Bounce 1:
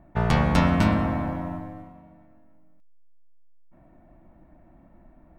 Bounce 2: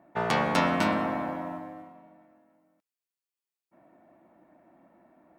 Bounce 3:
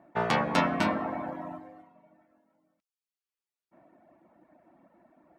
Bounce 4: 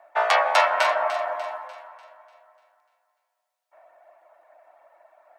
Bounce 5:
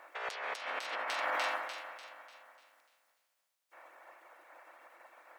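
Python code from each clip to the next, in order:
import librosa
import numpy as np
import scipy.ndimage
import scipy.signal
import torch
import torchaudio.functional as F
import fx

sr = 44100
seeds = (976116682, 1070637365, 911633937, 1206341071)

y1 = scipy.signal.sosfilt(scipy.signal.butter(2, 300.0, 'highpass', fs=sr, output='sos'), x)
y2 = fx.dereverb_blind(y1, sr, rt60_s=0.9)
y2 = fx.high_shelf(y2, sr, hz=8100.0, db=-9.0)
y2 = y2 * librosa.db_to_amplitude(1.0)
y3 = scipy.signal.sosfilt(scipy.signal.cheby1(4, 1.0, 600.0, 'highpass', fs=sr, output='sos'), y2)
y3 = fx.echo_alternate(y3, sr, ms=148, hz=1500.0, feedback_pct=67, wet_db=-7.5)
y3 = y3 * librosa.db_to_amplitude(8.5)
y4 = fx.spec_clip(y3, sr, under_db=21)
y4 = fx.over_compress(y4, sr, threshold_db=-30.0, ratio=-1.0)
y4 = y4 * librosa.db_to_amplitude(-8.0)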